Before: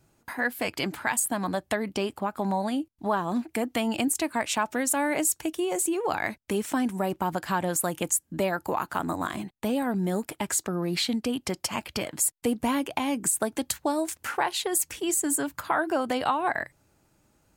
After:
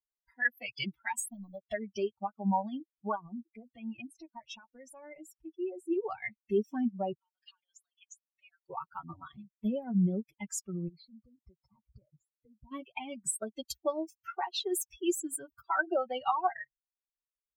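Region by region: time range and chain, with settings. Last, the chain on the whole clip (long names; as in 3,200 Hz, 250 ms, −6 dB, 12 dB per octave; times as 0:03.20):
0:01.26–0:01.70: mu-law and A-law mismatch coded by A + parametric band 1,500 Hz −13.5 dB 1.6 octaves
0:03.15–0:05.91: high-shelf EQ 2,400 Hz −7.5 dB + downward compressor 3 to 1, threshold −28 dBFS
0:07.19–0:08.70: downward compressor 10 to 1, threshold −29 dBFS + resonant band-pass 3,000 Hz, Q 0.98 + spectral tilt +2 dB per octave
0:10.88–0:12.72: moving average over 15 samples + downward compressor 4 to 1, threshold −34 dBFS
whole clip: spectral dynamics exaggerated over time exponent 3; high-shelf EQ 6,200 Hz −9 dB; comb filter 5.3 ms, depth 77%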